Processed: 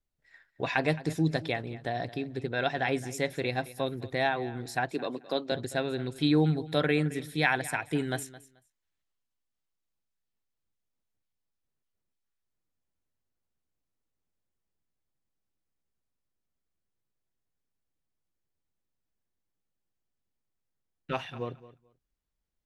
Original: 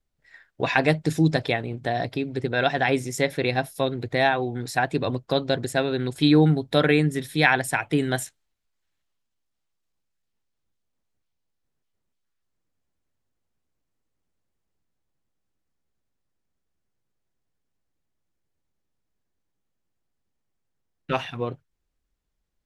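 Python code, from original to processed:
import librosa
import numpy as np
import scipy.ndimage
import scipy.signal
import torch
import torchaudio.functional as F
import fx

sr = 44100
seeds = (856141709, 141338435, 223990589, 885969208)

y = fx.highpass(x, sr, hz=210.0, slope=24, at=(4.91, 5.52))
y = fx.echo_feedback(y, sr, ms=217, feedback_pct=18, wet_db=-17.5)
y = y * librosa.db_to_amplitude(-7.0)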